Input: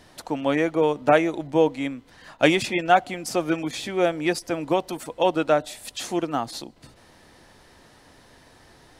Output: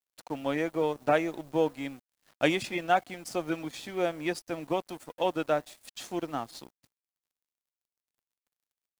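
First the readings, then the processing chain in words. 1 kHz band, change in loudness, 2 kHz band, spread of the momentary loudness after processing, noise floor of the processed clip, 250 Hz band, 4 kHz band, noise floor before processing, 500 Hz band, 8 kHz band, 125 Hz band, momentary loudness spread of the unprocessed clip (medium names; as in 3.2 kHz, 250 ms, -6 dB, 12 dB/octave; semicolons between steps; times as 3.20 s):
-7.5 dB, -7.5 dB, -7.5 dB, 13 LU, under -85 dBFS, -8.0 dB, -8.0 dB, -54 dBFS, -7.5 dB, -9.5 dB, -7.5 dB, 12 LU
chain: added noise white -55 dBFS; crossover distortion -41 dBFS; trim -7 dB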